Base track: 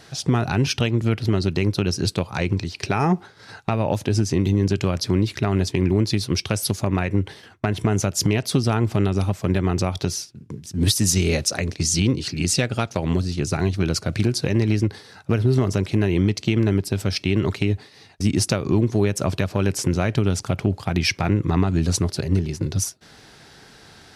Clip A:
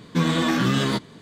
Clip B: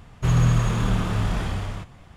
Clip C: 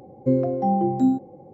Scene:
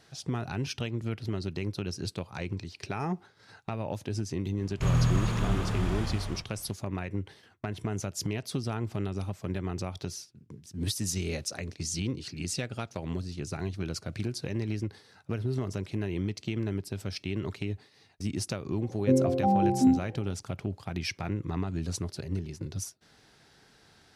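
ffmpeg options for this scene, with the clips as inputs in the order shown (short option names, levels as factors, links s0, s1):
-filter_complex "[0:a]volume=0.237[s0];[2:a]atrim=end=2.16,asetpts=PTS-STARTPTS,volume=0.501,afade=t=in:d=0.004:c=hsin,afade=t=out:st=2.156:d=0.004:c=hsin,adelay=4580[s1];[3:a]atrim=end=1.53,asetpts=PTS-STARTPTS,volume=0.708,afade=t=in:d=0.004:c=hsin,afade=t=out:st=1.526:d=0.004:c=hsin,adelay=18810[s2];[s0][s1][s2]amix=inputs=3:normalize=0"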